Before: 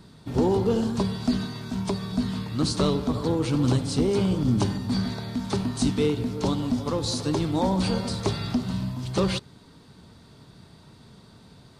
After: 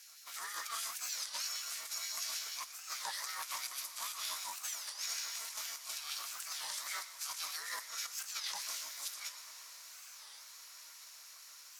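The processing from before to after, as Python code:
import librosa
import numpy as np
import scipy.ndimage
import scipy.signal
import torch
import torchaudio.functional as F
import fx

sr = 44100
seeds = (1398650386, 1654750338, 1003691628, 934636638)

p1 = np.diff(x, prepend=0.0)
p2 = fx.over_compress(p1, sr, threshold_db=-46.0, ratio=-0.5)
p3 = p2 + fx.echo_feedback(p2, sr, ms=118, feedback_pct=53, wet_db=-13.5, dry=0)
p4 = p3 * np.sin(2.0 * np.pi * 450.0 * np.arange(len(p3)) / sr)
p5 = fx.filter_lfo_highpass(p4, sr, shape='sine', hz=6.4, low_hz=790.0, high_hz=1700.0, q=1.4)
p6 = fx.formant_shift(p5, sr, semitones=5)
p7 = fx.echo_diffused(p6, sr, ms=919, feedback_pct=72, wet_db=-14.5)
p8 = fx.record_warp(p7, sr, rpm=33.33, depth_cents=250.0)
y = p8 * 10.0 ** (7.0 / 20.0)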